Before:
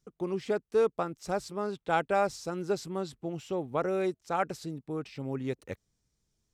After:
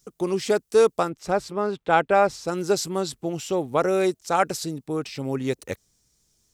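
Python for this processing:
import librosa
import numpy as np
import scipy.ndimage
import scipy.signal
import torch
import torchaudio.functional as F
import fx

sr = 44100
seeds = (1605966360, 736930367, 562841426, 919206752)

y = fx.bass_treble(x, sr, bass_db=-3, treble_db=fx.steps((0.0, 12.0), (1.08, -5.0), (2.47, 9.0)))
y = y * 10.0 ** (8.5 / 20.0)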